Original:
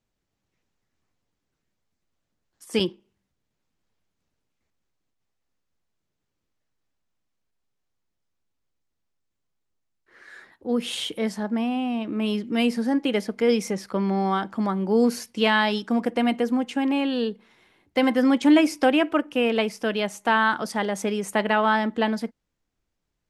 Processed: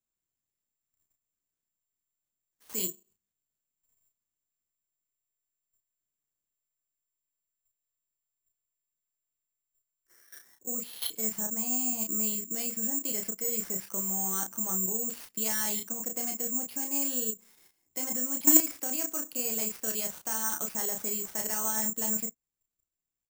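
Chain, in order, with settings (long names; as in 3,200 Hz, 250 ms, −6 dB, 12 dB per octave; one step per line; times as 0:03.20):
output level in coarse steps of 15 dB
double-tracking delay 32 ms −4.5 dB
bad sample-rate conversion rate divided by 6×, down none, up zero stuff
level −9.5 dB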